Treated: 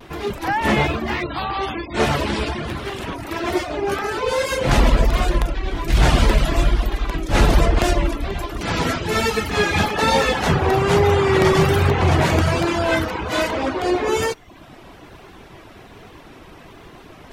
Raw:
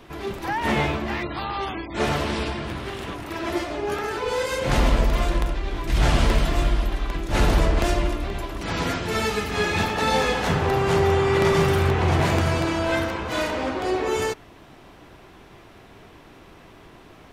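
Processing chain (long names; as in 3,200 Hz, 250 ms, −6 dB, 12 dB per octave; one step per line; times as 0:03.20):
reverb reduction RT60 0.59 s
reversed playback
upward compression, threshold −43 dBFS
reversed playback
pitch vibrato 1.2 Hz 60 cents
level +5.5 dB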